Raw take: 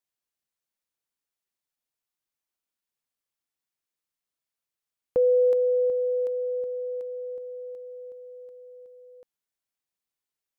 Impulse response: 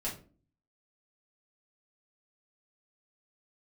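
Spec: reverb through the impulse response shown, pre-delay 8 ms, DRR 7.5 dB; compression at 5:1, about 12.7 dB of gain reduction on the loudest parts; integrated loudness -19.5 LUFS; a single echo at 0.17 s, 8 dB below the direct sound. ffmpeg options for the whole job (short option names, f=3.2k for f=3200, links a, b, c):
-filter_complex "[0:a]acompressor=threshold=-33dB:ratio=5,aecho=1:1:170:0.398,asplit=2[a][b];[1:a]atrim=start_sample=2205,adelay=8[c];[b][c]afir=irnorm=-1:irlink=0,volume=-10dB[d];[a][d]amix=inputs=2:normalize=0,volume=13.5dB"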